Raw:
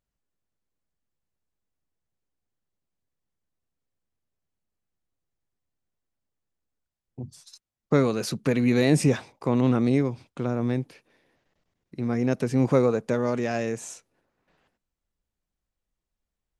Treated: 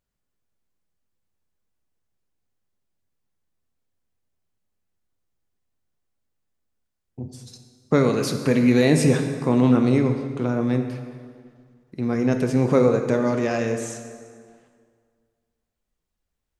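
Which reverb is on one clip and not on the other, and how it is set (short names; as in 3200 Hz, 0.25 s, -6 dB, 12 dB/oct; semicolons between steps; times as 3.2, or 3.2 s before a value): plate-style reverb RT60 2 s, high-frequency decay 0.7×, DRR 5 dB; gain +2.5 dB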